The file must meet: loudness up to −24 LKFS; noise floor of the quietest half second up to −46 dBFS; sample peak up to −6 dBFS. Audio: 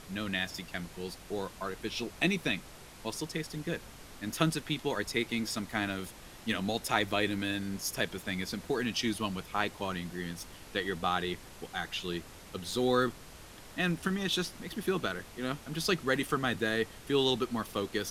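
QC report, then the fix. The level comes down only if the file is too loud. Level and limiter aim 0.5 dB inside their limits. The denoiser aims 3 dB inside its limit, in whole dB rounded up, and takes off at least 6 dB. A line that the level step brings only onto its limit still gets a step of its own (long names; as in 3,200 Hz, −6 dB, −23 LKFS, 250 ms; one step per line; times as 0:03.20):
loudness −33.5 LKFS: in spec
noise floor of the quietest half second −50 dBFS: in spec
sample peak −10.5 dBFS: in spec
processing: no processing needed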